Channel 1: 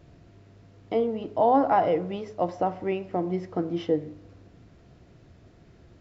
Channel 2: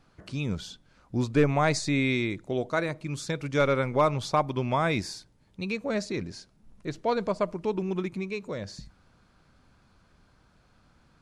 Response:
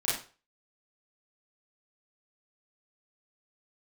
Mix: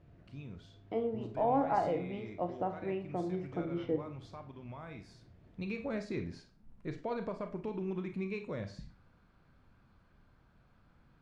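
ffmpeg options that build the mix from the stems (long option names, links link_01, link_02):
-filter_complex "[0:a]volume=-11dB,asplit=2[link_01][link_02];[link_02]volume=-15.5dB[link_03];[1:a]alimiter=limit=-23dB:level=0:latency=1:release=122,volume=-7.5dB,afade=type=in:start_time=5.16:duration=0.34:silence=0.316228,asplit=2[link_04][link_05];[link_05]volume=-13.5dB[link_06];[2:a]atrim=start_sample=2205[link_07];[link_03][link_06]amix=inputs=2:normalize=0[link_08];[link_08][link_07]afir=irnorm=-1:irlink=0[link_09];[link_01][link_04][link_09]amix=inputs=3:normalize=0,bass=frequency=250:gain=3,treble=frequency=4000:gain=-13"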